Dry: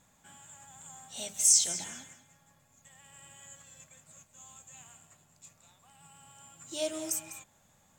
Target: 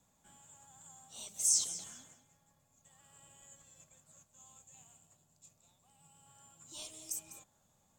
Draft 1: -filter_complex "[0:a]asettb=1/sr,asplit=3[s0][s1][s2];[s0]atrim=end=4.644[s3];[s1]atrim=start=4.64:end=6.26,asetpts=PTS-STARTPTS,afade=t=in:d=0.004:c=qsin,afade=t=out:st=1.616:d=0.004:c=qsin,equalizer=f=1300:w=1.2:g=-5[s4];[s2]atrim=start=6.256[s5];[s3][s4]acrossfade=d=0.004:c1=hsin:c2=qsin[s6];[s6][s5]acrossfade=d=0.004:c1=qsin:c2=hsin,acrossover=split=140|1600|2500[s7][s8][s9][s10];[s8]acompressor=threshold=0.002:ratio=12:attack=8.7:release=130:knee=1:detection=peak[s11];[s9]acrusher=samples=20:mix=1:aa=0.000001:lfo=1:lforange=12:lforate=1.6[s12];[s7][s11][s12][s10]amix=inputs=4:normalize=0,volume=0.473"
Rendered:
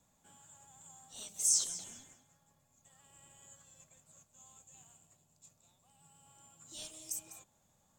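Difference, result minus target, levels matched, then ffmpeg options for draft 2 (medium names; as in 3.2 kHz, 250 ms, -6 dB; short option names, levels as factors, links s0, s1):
decimation with a swept rate: distortion -7 dB
-filter_complex "[0:a]asettb=1/sr,asplit=3[s0][s1][s2];[s0]atrim=end=4.644[s3];[s1]atrim=start=4.64:end=6.26,asetpts=PTS-STARTPTS,afade=t=in:d=0.004:c=qsin,afade=t=out:st=1.616:d=0.004:c=qsin,equalizer=f=1300:w=1.2:g=-5[s4];[s2]atrim=start=6.256[s5];[s3][s4]acrossfade=d=0.004:c1=hsin:c2=qsin[s6];[s6][s5]acrossfade=d=0.004:c1=qsin:c2=hsin,acrossover=split=140|1600|2500[s7][s8][s9][s10];[s8]acompressor=threshold=0.002:ratio=12:attack=8.7:release=130:knee=1:detection=peak[s11];[s9]acrusher=samples=20:mix=1:aa=0.000001:lfo=1:lforange=12:lforate=0.9[s12];[s7][s11][s12][s10]amix=inputs=4:normalize=0,volume=0.473"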